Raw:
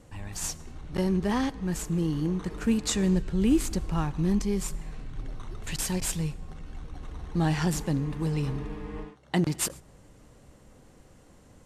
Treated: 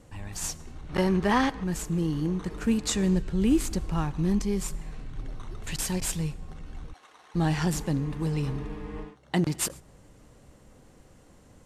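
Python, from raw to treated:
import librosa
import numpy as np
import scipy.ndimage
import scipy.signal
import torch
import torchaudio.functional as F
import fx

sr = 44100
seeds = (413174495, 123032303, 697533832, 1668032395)

y = fx.peak_eq(x, sr, hz=1400.0, db=8.5, octaves=2.9, at=(0.89, 1.64))
y = fx.highpass(y, sr, hz=810.0, slope=12, at=(6.92, 7.34), fade=0.02)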